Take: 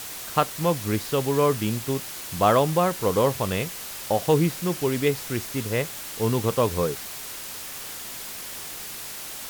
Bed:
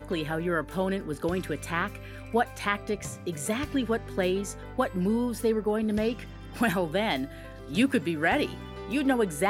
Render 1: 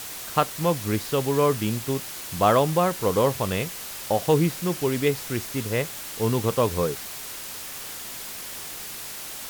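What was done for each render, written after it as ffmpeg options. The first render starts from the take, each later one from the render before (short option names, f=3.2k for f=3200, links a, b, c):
-af anull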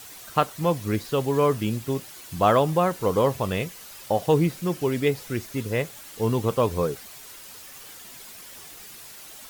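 -af "afftdn=nr=9:nf=-37"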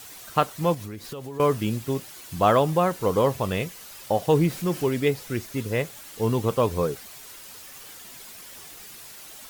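-filter_complex "[0:a]asettb=1/sr,asplit=3[a][b][c];[a]atrim=end=0.744[d];[b]atrim=start=0.74:end=1.4,asetpts=PTS-STARTPTS,afade=t=in:d=0.004:c=qsin,afade=t=out:st=0.656:d=0.004:c=qsin,acompressor=threshold=-32dB:ratio=8:attack=3.2:release=140:knee=1:detection=peak[e];[c]atrim=start=1.396[f];[d][e]acrossfade=d=0.004:c1=hsin:c2=qsin[g];[g][f]acrossfade=d=0.004:c1=qsin:c2=hsin,asettb=1/sr,asplit=3[h][i][j];[h]atrim=end=4.354[k];[i]atrim=start=4.35:end=4.89,asetpts=PTS-STARTPTS,afade=t=in:d=0.004:c=qsin,afade=t=out:st=0.536:d=0.004:c=qsin,aeval=exprs='val(0)+0.5*0.0126*sgn(val(0))':c=same[l];[j]atrim=start=4.886[m];[k][l]acrossfade=d=0.004:c1=hsin:c2=qsin[n];[n][m]acrossfade=d=0.004:c1=qsin:c2=hsin"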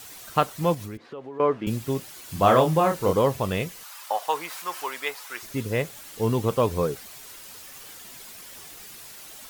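-filter_complex "[0:a]asettb=1/sr,asplit=3[a][b][c];[a]atrim=end=0.974[d];[b]atrim=start=0.97:end=1.67,asetpts=PTS-STARTPTS,afade=t=in:d=0.004:c=qsin,afade=t=out:st=0.696:d=0.004:c=qsin,highpass=250,lowpass=2k[e];[c]atrim=start=1.666[f];[d][e]acrossfade=d=0.004:c1=hsin:c2=qsin[g];[g][f]acrossfade=d=0.004:c1=qsin:c2=hsin,asettb=1/sr,asplit=3[h][i][j];[h]atrim=end=2.254[k];[i]atrim=start=2.25:end=3.13,asetpts=PTS-STARTPTS,afade=t=in:d=0.004:c=qsin,afade=t=out:st=0.876:d=0.004:c=qsin,asplit=2[l][m];[m]adelay=31,volume=-4.5dB[n];[l][n]amix=inputs=2:normalize=0,atrim=end_sample=38808[o];[j]atrim=start=3.126[p];[k][o]acrossfade=d=0.004:c1=hsin:c2=qsin[q];[q][p]acrossfade=d=0.004:c1=qsin:c2=hsin,asettb=1/sr,asplit=3[r][s][t];[r]atrim=end=3.834[u];[s]atrim=start=3.83:end=5.43,asetpts=PTS-STARTPTS,afade=t=in:d=0.004:c=qsin,afade=t=out:st=1.596:d=0.004:c=qsin,highpass=f=1k:t=q:w=2.1[v];[t]atrim=start=5.426[w];[u][v]acrossfade=d=0.004:c1=hsin:c2=qsin[x];[x][w]acrossfade=d=0.004:c1=qsin:c2=hsin"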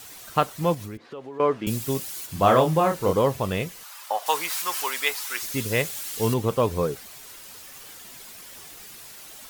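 -filter_complex "[0:a]asplit=3[a][b][c];[a]afade=t=out:st=1.1:d=0.02[d];[b]highshelf=f=4.1k:g=10,afade=t=in:st=1.1:d=0.02,afade=t=out:st=2.25:d=0.02[e];[c]afade=t=in:st=2.25:d=0.02[f];[d][e][f]amix=inputs=3:normalize=0,asettb=1/sr,asplit=3[g][h][i];[g]atrim=end=4.264[j];[h]atrim=start=4.26:end=6.34,asetpts=PTS-STARTPTS,afade=t=in:d=0.004:c=qsin,afade=t=out:st=2.076:d=0.004:c=qsin,highshelf=f=2.1k:g=10.5[k];[i]atrim=start=6.336[l];[j][k]acrossfade=d=0.004:c1=hsin:c2=qsin[m];[m][l]acrossfade=d=0.004:c1=qsin:c2=hsin"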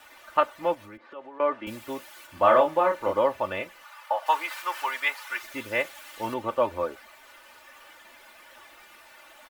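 -filter_complex "[0:a]acrossover=split=480 2700:gain=0.178 1 0.112[a][b][c];[a][b][c]amix=inputs=3:normalize=0,aecho=1:1:3.4:0.78"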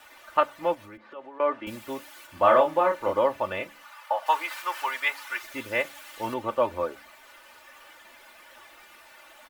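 -af "bandreject=f=71.31:t=h:w=4,bandreject=f=142.62:t=h:w=4,bandreject=f=213.93:t=h:w=4,bandreject=f=285.24:t=h:w=4"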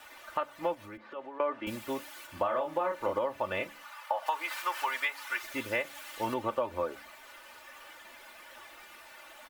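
-af "alimiter=limit=-14dB:level=0:latency=1:release=319,acompressor=threshold=-27dB:ratio=6"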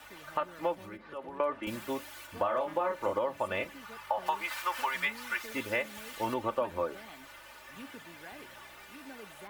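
-filter_complex "[1:a]volume=-24.5dB[a];[0:a][a]amix=inputs=2:normalize=0"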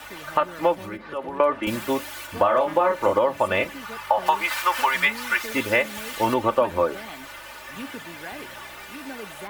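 -af "volume=11dB"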